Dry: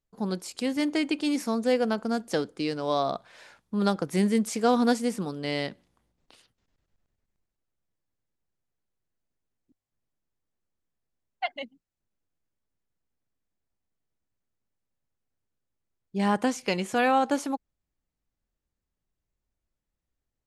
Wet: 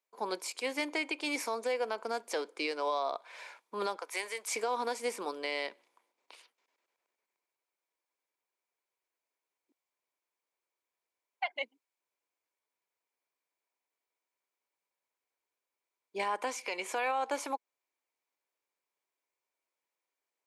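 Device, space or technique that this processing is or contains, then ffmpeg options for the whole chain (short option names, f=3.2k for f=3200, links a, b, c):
laptop speaker: -filter_complex "[0:a]highpass=f=390:w=0.5412,highpass=f=390:w=1.3066,equalizer=f=980:t=o:w=0.22:g=9.5,equalizer=f=2.3k:t=o:w=0.22:g=10.5,alimiter=limit=-23dB:level=0:latency=1:release=208,asplit=3[a][b][c];[a]afade=t=out:st=3.97:d=0.02[d];[b]highpass=710,afade=t=in:st=3.97:d=0.02,afade=t=out:st=4.49:d=0.02[e];[c]afade=t=in:st=4.49:d=0.02[f];[d][e][f]amix=inputs=3:normalize=0"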